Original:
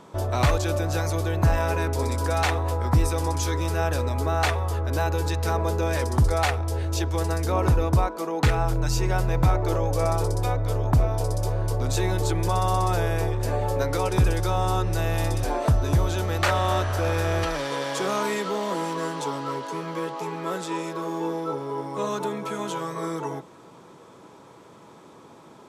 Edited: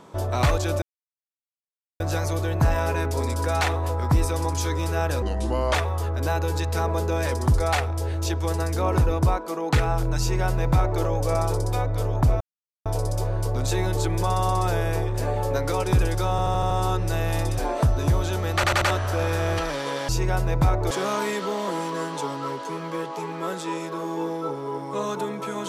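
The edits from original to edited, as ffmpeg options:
-filter_complex "[0:a]asplit=16[a][b][c][d][e][f][g][h][i][j][k][l][m][n][o][p];[a]atrim=end=0.82,asetpts=PTS-STARTPTS,afade=t=out:st=0.816:d=0.004:c=hsin,apad=pad_dur=1.18[q];[b]atrim=start=0.82:end=4.044,asetpts=PTS-STARTPTS,afade=t=in:d=0.004:c=hsin[r];[c]atrim=start=4.04:end=4.45,asetpts=PTS-STARTPTS,asetrate=34398,aresample=44100[s];[d]atrim=start=4.446:end=11.11,asetpts=PTS-STARTPTS,afade=t=out:st=6.66:d=0.004:c=hsin,apad=pad_dur=0.45[t];[e]atrim=start=11.11:end=14.642,asetpts=PTS-STARTPTS,afade=t=in:d=0.004:c=hsin[u];[f]atrim=start=14.558:end=14.642[v];[g]atrim=start=14.558:end=14.642[w];[h]atrim=start=14.558:end=14.642[x];[i]atrim=start=14.558:end=14.642[y];[j]atrim=start=14.558:end=16.492[z];[k]atrim=start=16.398:end=16.492[aa];[l]atrim=start=16.398:end=16.492[ab];[m]atrim=start=16.398:end=16.492[ac];[n]atrim=start=16.758:end=17.942[ad];[o]atrim=start=8.898:end=9.722[ae];[p]atrim=start=17.938[af];[q][r]concat=n=2:v=0:a=1[ag];[ag][s]acrossfade=d=0.004:c1=hsin:c2=hsin[ah];[t][u]concat=n=2:v=0:a=1[ai];[ah][ai]acrossfade=d=0.004:c1=hsin:c2=hsin[aj];[aj][v]acrossfade=d=0.004:c1=hsin:c2=hsin[ak];[ak][w]acrossfade=d=0.004:c1=hsin:c2=hsin[al];[al][x]acrossfade=d=0.004:c1=hsin:c2=hsin[am];[am][y]acrossfade=d=0.004:c1=hsin:c2=hsin[an];[an][z]acrossfade=d=0.004:c1=hsin:c2=hsin[ao];[ao][aa]acrossfade=d=0.004:c1=hsin:c2=hsin[ap];[ap][ab]acrossfade=d=0.004:c1=hsin:c2=hsin[aq];[aq][ac]acrossfade=d=0.004:c1=hsin:c2=hsin[ar];[ar][ad]acrossfade=d=0.004:c1=hsin:c2=hsin[as];[as][ae]acrossfade=d=0.004:c1=hsin:c2=hsin[at];[at][af]acrossfade=d=0.004:c1=hsin:c2=hsin"

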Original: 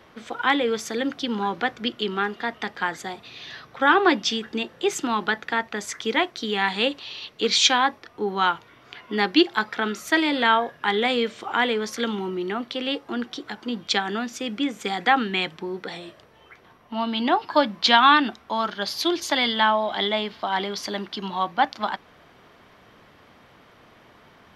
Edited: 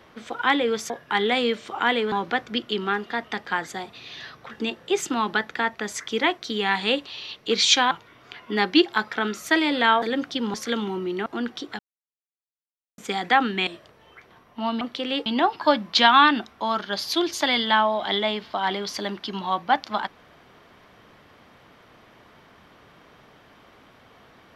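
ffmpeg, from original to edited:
-filter_complex "[0:a]asplit=13[a][b][c][d][e][f][g][h][i][j][k][l][m];[a]atrim=end=0.902[n];[b]atrim=start=10.628:end=11.852[o];[c]atrim=start=1.418:end=3.812[p];[d]atrim=start=4.438:end=7.842[q];[e]atrim=start=8.518:end=10.632[r];[f]atrim=start=0.898:end=1.422[s];[g]atrim=start=11.848:end=12.572[t];[h]atrim=start=13.018:end=13.55,asetpts=PTS-STARTPTS,afade=t=out:st=0.528:d=0.004:c=hsin[u];[i]atrim=start=13.55:end=14.74,asetpts=PTS-STARTPTS,volume=0[v];[j]atrim=start=14.74:end=15.432,asetpts=PTS-STARTPTS,afade=t=in:d=0.004:c=hsin[w];[k]atrim=start=16.008:end=17.152[x];[l]atrim=start=12.568:end=13.022[y];[m]atrim=start=17.148[z];[n][o]acrossfade=d=0.004:c1=hsin:c2=hsin[aa];[aa][p]acrossfade=d=0.004:c1=hsin:c2=hsin[ab];[ab][q]acrossfade=d=0.004:c1=hsin:c2=hsin[ac];[ac][r]acrossfade=d=0.004:c1=hsin:c2=hsin[ad];[ad][s]acrossfade=d=0.004:c1=hsin:c2=hsin[ae];[ae][t]acrossfade=d=0.004:c1=hsin:c2=hsin[af];[u][v][w]concat=n=3:v=0:a=1[ag];[af][ag]acrossfade=d=0.004:c1=hsin:c2=hsin[ah];[ah][x]acrossfade=d=0.004:c1=hsin:c2=hsin[ai];[ai][y]acrossfade=d=0.004:c1=hsin:c2=hsin[aj];[aj][z]acrossfade=d=0.004:c1=hsin:c2=hsin"

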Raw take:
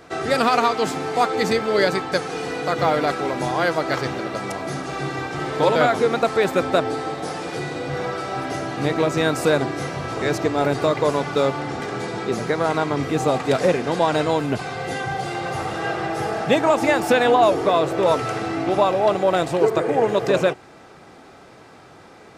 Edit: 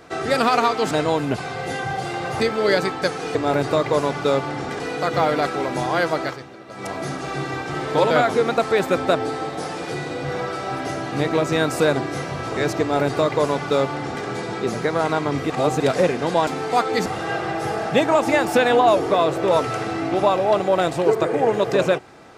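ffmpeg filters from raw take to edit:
-filter_complex "[0:a]asplit=11[a][b][c][d][e][f][g][h][i][j][k];[a]atrim=end=0.912[l];[b]atrim=start=14.118:end=15.612[m];[c]atrim=start=1.498:end=2.452[n];[d]atrim=start=10.458:end=11.912[o];[e]atrim=start=2.448:end=4.12,asetpts=PTS-STARTPTS,afade=t=out:st=1.412:d=0.26:c=qua:silence=0.199526[p];[f]atrim=start=4.12:end=4.28,asetpts=PTS-STARTPTS,volume=-14dB[q];[g]atrim=start=4.28:end=13.152,asetpts=PTS-STARTPTS,afade=t=in:d=0.26:c=qua:silence=0.199526[r];[h]atrim=start=13.148:end=13.452,asetpts=PTS-STARTPTS,areverse[s];[i]atrim=start=13.448:end=14.122[t];[j]atrim=start=0.908:end=1.502[u];[k]atrim=start=15.608[v];[l][m]acrossfade=d=0.004:c1=hsin:c2=hsin[w];[w][n]acrossfade=d=0.004:c1=hsin:c2=hsin[x];[x][o]acrossfade=d=0.004:c1=hsin:c2=hsin[y];[p][q][r]concat=n=3:v=0:a=1[z];[y][z]acrossfade=d=0.004:c1=hsin:c2=hsin[aa];[aa][s]acrossfade=d=0.004:c1=hsin:c2=hsin[ab];[ab][t]acrossfade=d=0.004:c1=hsin:c2=hsin[ac];[ac][u]acrossfade=d=0.004:c1=hsin:c2=hsin[ad];[ad][v]acrossfade=d=0.004:c1=hsin:c2=hsin"

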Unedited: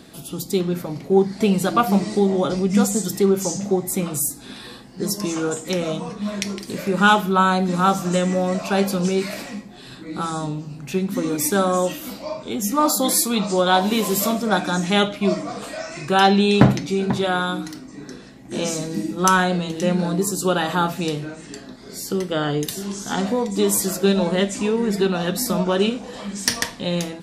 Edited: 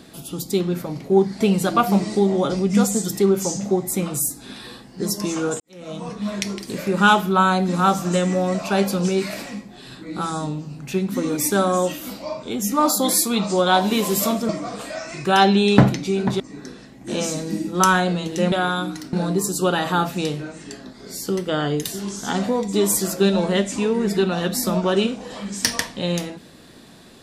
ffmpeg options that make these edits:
-filter_complex "[0:a]asplit=6[a][b][c][d][e][f];[a]atrim=end=5.6,asetpts=PTS-STARTPTS,afade=t=out:st=5.596:d=0.004:c=hsin[g];[b]atrim=start=5.6:end=14.492,asetpts=PTS-STARTPTS,afade=t=in:d=0.48:c=qua[h];[c]atrim=start=15.318:end=17.232[i];[d]atrim=start=17.838:end=19.962[j];[e]atrim=start=17.228:end=17.842[k];[f]atrim=start=19.958[l];[g][h]concat=n=2:v=0:a=1[m];[m][i]acrossfade=d=0.004:c1=hsin:c2=hsin[n];[n][j]acrossfade=d=0.004:c1=hsin:c2=hsin[o];[o][k]acrossfade=d=0.004:c1=hsin:c2=hsin[p];[p][l]acrossfade=d=0.004:c1=hsin:c2=hsin"

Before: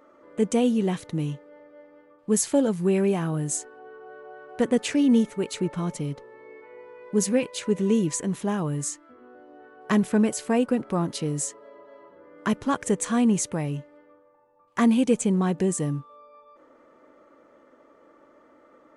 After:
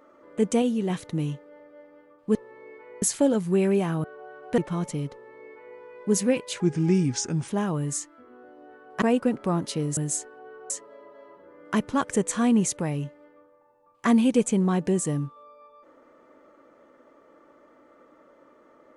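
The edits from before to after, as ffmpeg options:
-filter_complex "[0:a]asplit=12[a][b][c][d][e][f][g][h][i][j][k][l];[a]atrim=end=0.622[m];[b]atrim=start=0.618:end=0.902,asetpts=PTS-STARTPTS,volume=-3dB[n];[c]atrim=start=0.898:end=2.352[o];[d]atrim=start=6.178:end=6.852[p];[e]atrim=start=2.348:end=3.372[q];[f]atrim=start=4.098:end=4.642[r];[g]atrim=start=5.638:end=7.664[s];[h]atrim=start=7.66:end=8.39,asetpts=PTS-STARTPTS,asetrate=36603,aresample=44100[t];[i]atrim=start=8.386:end=9.932[u];[j]atrim=start=10.478:end=11.432[v];[k]atrim=start=3.368:end=4.102[w];[l]atrim=start=11.428[x];[m][n]acrossfade=d=0.004:c1=hsin:c2=hsin[y];[y][o]acrossfade=d=0.004:c1=hsin:c2=hsin[z];[z][p]acrossfade=d=0.004:c1=hsin:c2=hsin[aa];[aa][q]acrossfade=d=0.004:c1=hsin:c2=hsin[ab];[ab][r]acrossfade=d=0.004:c1=hsin:c2=hsin[ac];[ac][s]acrossfade=d=0.004:c1=hsin:c2=hsin[ad];[ad][t]acrossfade=d=0.004:c1=hsin:c2=hsin[ae];[ae][u]acrossfade=d=0.004:c1=hsin:c2=hsin[af];[af][v]acrossfade=d=0.004:c1=hsin:c2=hsin[ag];[ag][w]acrossfade=d=0.004:c1=hsin:c2=hsin[ah];[ah][x]acrossfade=d=0.004:c1=hsin:c2=hsin"

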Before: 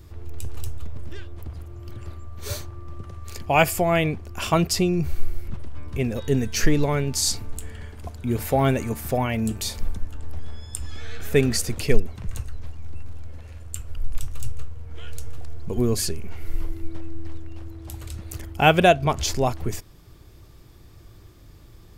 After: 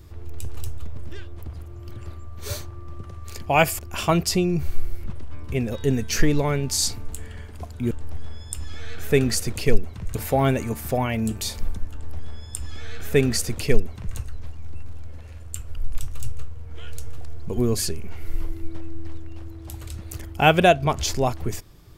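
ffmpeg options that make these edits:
-filter_complex "[0:a]asplit=4[a][b][c][d];[a]atrim=end=3.792[e];[b]atrim=start=4.228:end=8.352[f];[c]atrim=start=10.128:end=12.372[g];[d]atrim=start=8.348[h];[e][f]acrossfade=d=0.004:c1=hsin:c2=hsin[i];[i][g]acrossfade=d=0.004:c1=hsin:c2=hsin[j];[j][h]acrossfade=d=0.004:c1=hsin:c2=hsin"

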